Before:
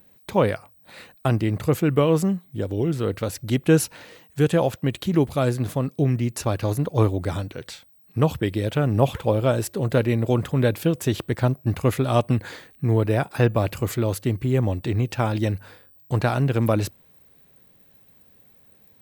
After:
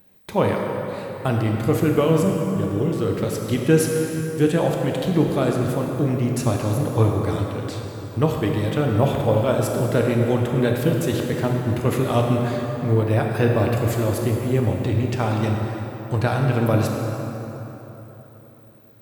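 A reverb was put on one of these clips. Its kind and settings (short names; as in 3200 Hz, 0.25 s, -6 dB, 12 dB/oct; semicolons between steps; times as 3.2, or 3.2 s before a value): plate-style reverb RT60 3.8 s, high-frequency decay 0.6×, DRR 0 dB; gain -1 dB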